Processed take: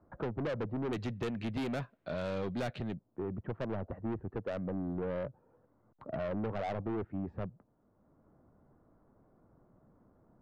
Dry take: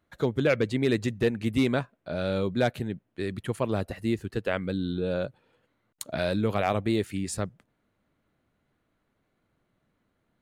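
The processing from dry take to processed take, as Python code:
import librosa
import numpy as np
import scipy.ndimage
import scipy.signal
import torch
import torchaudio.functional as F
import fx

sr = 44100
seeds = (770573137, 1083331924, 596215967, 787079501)

y = fx.lowpass(x, sr, hz=fx.steps((0.0, 1100.0), (0.93, 4500.0), (2.94, 1100.0)), slope=24)
y = 10.0 ** (-29.5 / 20.0) * np.tanh(y / 10.0 ** (-29.5 / 20.0))
y = fx.band_squash(y, sr, depth_pct=40)
y = y * 10.0 ** (-2.5 / 20.0)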